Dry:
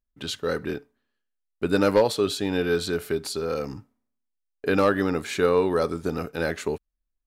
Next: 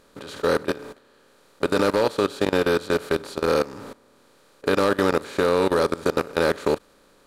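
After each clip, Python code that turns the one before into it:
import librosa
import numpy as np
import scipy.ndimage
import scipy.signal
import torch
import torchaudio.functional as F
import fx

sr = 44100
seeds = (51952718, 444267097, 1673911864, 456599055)

y = fx.bin_compress(x, sr, power=0.4)
y = fx.level_steps(y, sr, step_db=19)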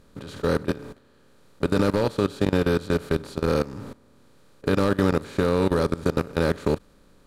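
y = fx.bass_treble(x, sr, bass_db=14, treble_db=0)
y = y * librosa.db_to_amplitude(-4.5)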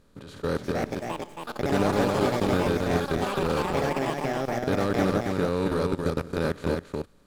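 y = fx.echo_pitch(x, sr, ms=439, semitones=6, count=3, db_per_echo=-3.0)
y = y + 10.0 ** (-4.0 / 20.0) * np.pad(y, (int(273 * sr / 1000.0), 0))[:len(y)]
y = y * librosa.db_to_amplitude(-5.0)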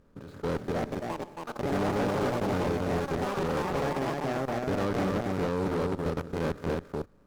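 y = scipy.signal.medfilt(x, 15)
y = fx.tube_stage(y, sr, drive_db=25.0, bias=0.45)
y = y * librosa.db_to_amplitude(1.5)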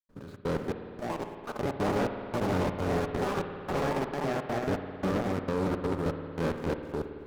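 y = fx.step_gate(x, sr, bpm=167, pattern='.xxx.xxx...xxxx', floor_db=-60.0, edge_ms=4.5)
y = fx.rev_spring(y, sr, rt60_s=2.5, pass_ms=(54,), chirp_ms=35, drr_db=7.0)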